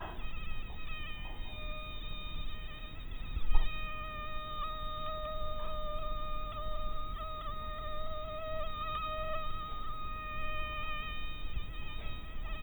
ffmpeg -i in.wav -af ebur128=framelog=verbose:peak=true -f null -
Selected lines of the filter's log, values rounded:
Integrated loudness:
  I:         -41.4 LUFS
  Threshold: -51.4 LUFS
Loudness range:
  LRA:         2.7 LU
  Threshold: -61.0 LUFS
  LRA low:   -42.6 LUFS
  LRA high:  -39.9 LUFS
True peak:
  Peak:      -12.4 dBFS